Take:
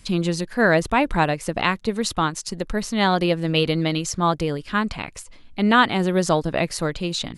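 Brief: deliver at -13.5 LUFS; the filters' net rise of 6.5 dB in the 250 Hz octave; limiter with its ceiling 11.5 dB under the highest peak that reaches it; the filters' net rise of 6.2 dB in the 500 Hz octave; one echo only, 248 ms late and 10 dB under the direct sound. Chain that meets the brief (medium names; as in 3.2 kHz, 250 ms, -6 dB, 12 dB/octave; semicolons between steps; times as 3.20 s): peaking EQ 250 Hz +7.5 dB; peaking EQ 500 Hz +5.5 dB; peak limiter -12 dBFS; delay 248 ms -10 dB; trim +8.5 dB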